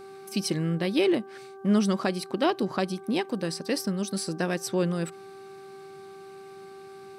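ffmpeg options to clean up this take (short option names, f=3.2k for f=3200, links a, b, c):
-af "bandreject=f=389.3:t=h:w=4,bandreject=f=778.6:t=h:w=4,bandreject=f=1.1679k:t=h:w=4,bandreject=f=1.5572k:t=h:w=4"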